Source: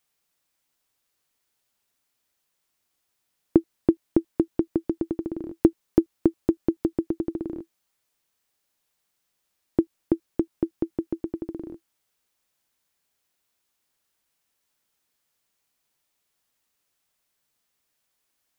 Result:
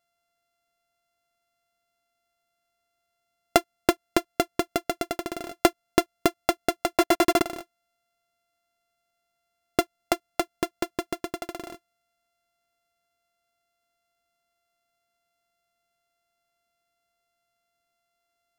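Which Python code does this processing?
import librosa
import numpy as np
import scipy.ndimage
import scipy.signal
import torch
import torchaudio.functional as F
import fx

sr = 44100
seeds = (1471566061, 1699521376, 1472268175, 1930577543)

y = np.r_[np.sort(x[:len(x) // 64 * 64].reshape(-1, 64), axis=1).ravel(), x[len(x) // 64 * 64:]]
y = fx.leveller(y, sr, passes=5, at=(6.97, 7.42))
y = F.gain(torch.from_numpy(y), -2.0).numpy()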